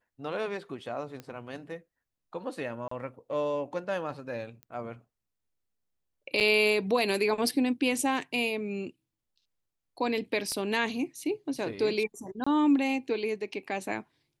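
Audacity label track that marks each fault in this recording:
1.200000	1.200000	pop -26 dBFS
2.880000	2.910000	gap 34 ms
4.630000	4.630000	pop -29 dBFS
6.400000	6.410000	gap 7.5 ms
10.520000	10.520000	pop -23 dBFS
12.440000	12.460000	gap 25 ms

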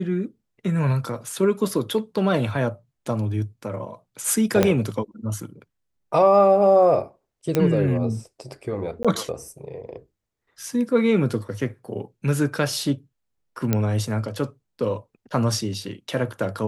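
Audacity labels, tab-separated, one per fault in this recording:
4.630000	4.630000	pop -4 dBFS
7.550000	7.550000	pop -8 dBFS
9.030000	9.050000	gap 16 ms
13.730000	13.730000	pop -7 dBFS

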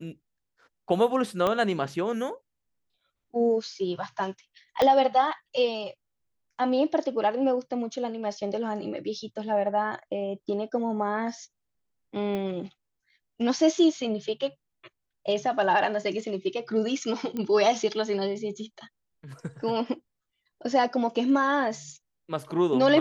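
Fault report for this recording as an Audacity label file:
1.470000	1.470000	pop -13 dBFS
4.820000	4.820000	pop -11 dBFS
12.350000	12.350000	pop -20 dBFS
17.370000	17.370000	pop -20 dBFS

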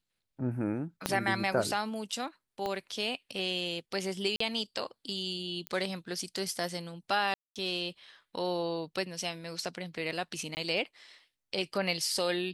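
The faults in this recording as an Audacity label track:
1.060000	1.060000	pop -12 dBFS
2.660000	2.660000	pop -21 dBFS
4.360000	4.400000	gap 44 ms
5.670000	5.670000	pop -21 dBFS
7.340000	7.560000	gap 0.217 s
10.550000	10.570000	gap 19 ms

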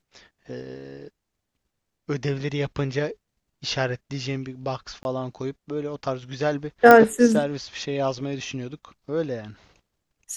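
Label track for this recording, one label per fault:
5.030000	5.050000	gap 21 ms
6.910000	6.910000	pop -2 dBFS

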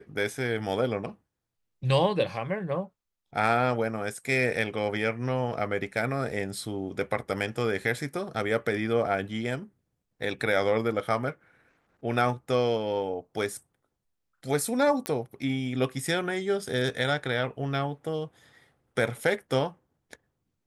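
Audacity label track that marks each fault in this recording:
15.060000	15.060000	pop -14 dBFS

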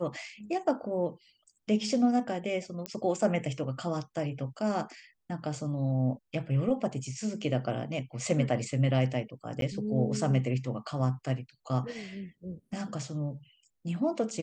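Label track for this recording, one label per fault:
2.860000	2.860000	pop -18 dBFS
9.610000	9.620000	gap

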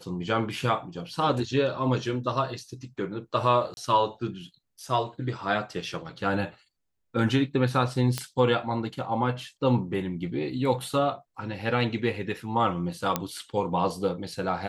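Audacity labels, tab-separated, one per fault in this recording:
3.740000	3.770000	gap 31 ms
8.180000	8.180000	pop -12 dBFS
13.160000	13.160000	pop -9 dBFS

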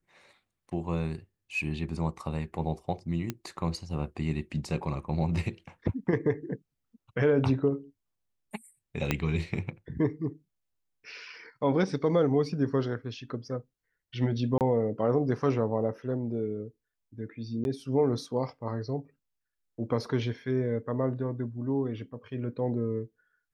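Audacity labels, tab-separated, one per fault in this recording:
3.300000	3.300000	pop -17 dBFS
9.110000	9.110000	pop -11 dBFS
14.580000	14.610000	gap 28 ms
17.640000	17.650000	gap 11 ms

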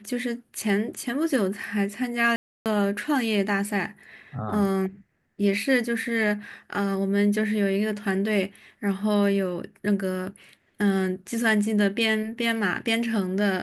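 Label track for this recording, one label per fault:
2.360000	2.660000	gap 0.298 s

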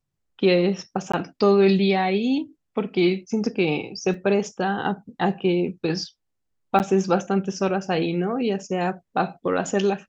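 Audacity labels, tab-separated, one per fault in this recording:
1.120000	1.140000	gap 15 ms
4.140000	4.140000	gap 2.2 ms
6.790000	6.800000	gap 9.1 ms

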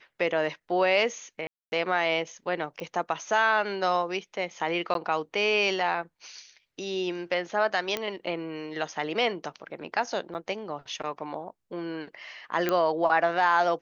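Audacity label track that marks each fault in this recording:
1.470000	1.720000	gap 0.251 s
2.800000	2.800000	pop -24 dBFS
4.940000	4.950000	gap 12 ms
7.970000	7.970000	pop -14 dBFS
10.340000	10.350000	gap 9.4 ms
12.690000	12.690000	pop -12 dBFS

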